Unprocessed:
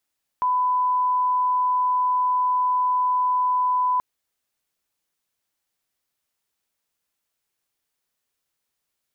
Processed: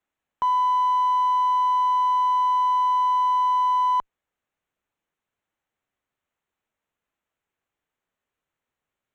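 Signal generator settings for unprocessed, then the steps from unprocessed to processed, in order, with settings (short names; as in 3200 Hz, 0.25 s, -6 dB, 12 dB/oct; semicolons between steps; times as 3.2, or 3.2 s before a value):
line-up tone -18 dBFS 3.58 s
Wiener smoothing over 9 samples; in parallel at -11 dB: one-sided clip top -37.5 dBFS, bottom -23.5 dBFS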